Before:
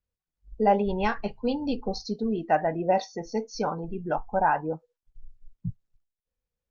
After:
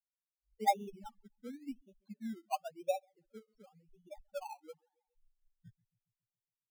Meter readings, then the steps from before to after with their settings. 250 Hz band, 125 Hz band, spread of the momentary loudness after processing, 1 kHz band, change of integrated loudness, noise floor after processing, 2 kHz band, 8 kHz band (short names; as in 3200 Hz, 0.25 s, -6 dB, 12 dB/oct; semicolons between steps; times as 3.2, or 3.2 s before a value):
-17.5 dB, -23.5 dB, 23 LU, -11.5 dB, -12.0 dB, under -85 dBFS, -17.0 dB, n/a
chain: treble ducked by the level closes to 2100 Hz, closed at -22 dBFS; high shelf 2200 Hz +2.5 dB; on a send: dark delay 0.139 s, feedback 54%, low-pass 1300 Hz, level -15 dB; on the sum: loudest bins only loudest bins 2; in parallel at -4 dB: decimation with a swept rate 20×, swing 60% 0.93 Hz; on the sum: upward expander 2.5:1, over -35 dBFS; gain -6 dB